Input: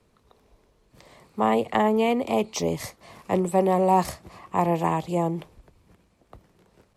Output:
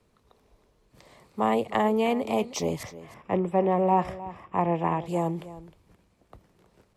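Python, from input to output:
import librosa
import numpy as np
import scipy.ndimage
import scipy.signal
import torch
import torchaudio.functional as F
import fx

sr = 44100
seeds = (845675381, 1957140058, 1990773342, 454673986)

y = fx.savgol(x, sr, points=25, at=(2.83, 5.06))
y = y + 10.0 ** (-16.0 / 20.0) * np.pad(y, (int(310 * sr / 1000.0), 0))[:len(y)]
y = y * librosa.db_to_amplitude(-2.5)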